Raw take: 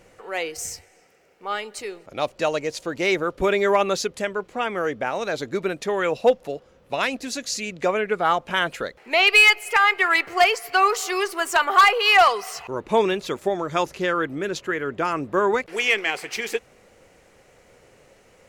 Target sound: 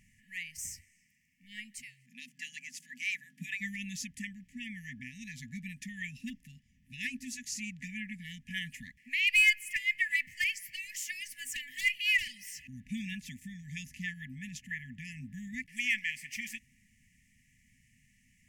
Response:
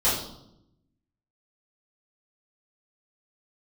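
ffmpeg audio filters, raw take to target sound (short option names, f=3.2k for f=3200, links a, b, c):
-filter_complex "[0:a]asplit=3[a][b][c];[a]afade=t=out:st=1.81:d=0.02[d];[b]afreqshift=130,afade=t=in:st=1.81:d=0.02,afade=t=out:st=3.6:d=0.02[e];[c]afade=t=in:st=3.6:d=0.02[f];[d][e][f]amix=inputs=3:normalize=0,afftfilt=real='re*(1-between(b*sr/4096,260,1700))':imag='im*(1-between(b*sr/4096,260,1700))':win_size=4096:overlap=0.75,equalizer=f=4k:t=o:w=0.58:g=-14,volume=-7dB"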